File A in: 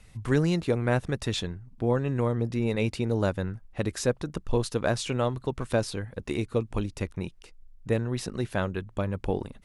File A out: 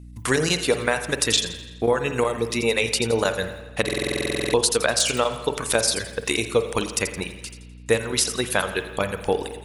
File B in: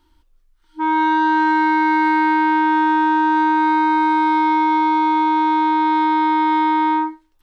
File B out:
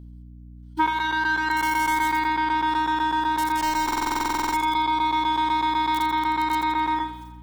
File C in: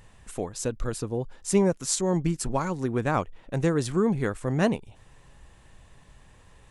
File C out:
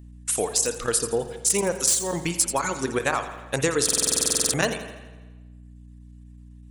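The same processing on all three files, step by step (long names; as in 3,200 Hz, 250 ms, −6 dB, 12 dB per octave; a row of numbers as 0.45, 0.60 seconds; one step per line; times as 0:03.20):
square-wave tremolo 8 Hz, depth 65%, duty 90%
spectral tilt +4 dB per octave
in parallel at −5.5 dB: wrap-around overflow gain 10 dB
on the sum: noise gate −45 dBFS, range −28 dB
downward compressor 6 to 1, threshold −24 dBFS
delay with a high-pass on its return 84 ms, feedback 55%, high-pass 3,000 Hz, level −5 dB
reverb reduction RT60 1.1 s
dynamic equaliser 460 Hz, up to +5 dB, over −47 dBFS, Q 6.2
mains hum 60 Hz, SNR 17 dB
spring reverb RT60 1.2 s, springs 45/52 ms, chirp 50 ms, DRR 8.5 dB
buffer that repeats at 0:03.84, samples 2,048, times 14
loudness normalisation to −23 LKFS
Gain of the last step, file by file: +7.5, +5.0, +4.5 decibels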